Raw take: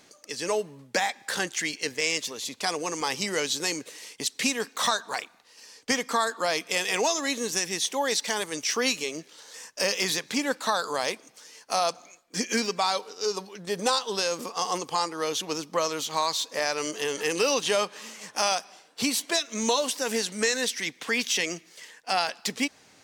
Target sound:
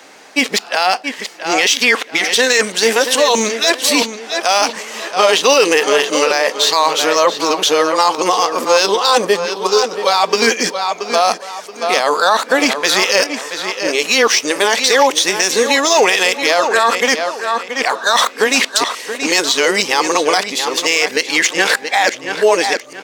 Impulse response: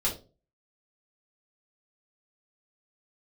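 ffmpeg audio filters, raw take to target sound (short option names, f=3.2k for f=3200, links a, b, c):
-filter_complex "[0:a]areverse,asplit=2[a][b];[b]adynamicsmooth=sensitivity=3.5:basefreq=3.3k,volume=0dB[c];[a][c]amix=inputs=2:normalize=0,highpass=360,asplit=2[d][e];[e]adelay=677,lowpass=f=5k:p=1,volume=-10.5dB,asplit=2[f][g];[g]adelay=677,lowpass=f=5k:p=1,volume=0.33,asplit=2[h][i];[i]adelay=677,lowpass=f=5k:p=1,volume=0.33,asplit=2[j][k];[k]adelay=677,lowpass=f=5k:p=1,volume=0.33[l];[d][f][h][j][l]amix=inputs=5:normalize=0,asplit=2[m][n];[1:a]atrim=start_sample=2205,adelay=10[o];[n][o]afir=irnorm=-1:irlink=0,volume=-30.5dB[p];[m][p]amix=inputs=2:normalize=0,alimiter=level_in=13.5dB:limit=-1dB:release=50:level=0:latency=1,volume=-1dB"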